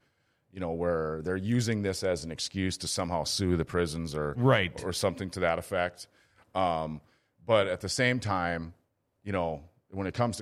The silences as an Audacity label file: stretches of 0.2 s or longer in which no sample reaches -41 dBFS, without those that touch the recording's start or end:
6.040000	6.550000	silence
6.980000	7.480000	silence
8.700000	9.270000	silence
9.580000	9.930000	silence